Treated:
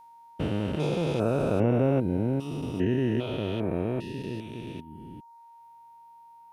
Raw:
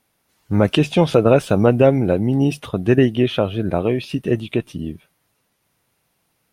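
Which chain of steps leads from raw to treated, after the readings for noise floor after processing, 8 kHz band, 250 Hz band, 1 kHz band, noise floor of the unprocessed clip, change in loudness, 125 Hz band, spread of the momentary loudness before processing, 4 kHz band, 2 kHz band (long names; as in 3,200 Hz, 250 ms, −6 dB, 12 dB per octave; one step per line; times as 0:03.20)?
−52 dBFS, can't be measured, −9.5 dB, −10.5 dB, −69 dBFS, −10.5 dB, −9.0 dB, 10 LU, −13.0 dB, −12.5 dB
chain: spectrum averaged block by block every 400 ms
reverb reduction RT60 0.57 s
steady tone 930 Hz −44 dBFS
level −5 dB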